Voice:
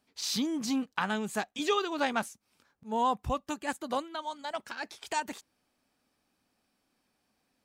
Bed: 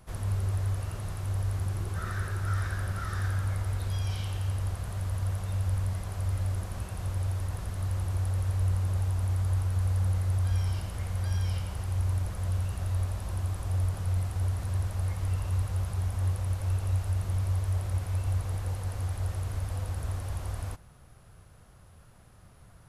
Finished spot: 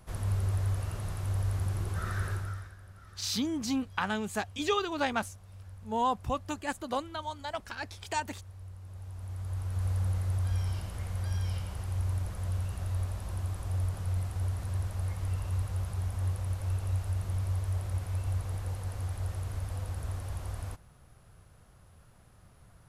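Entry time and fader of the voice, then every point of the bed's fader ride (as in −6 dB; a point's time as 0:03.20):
3.00 s, −0.5 dB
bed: 0:02.33 −0.5 dB
0:02.76 −19 dB
0:08.77 −19 dB
0:09.87 −3 dB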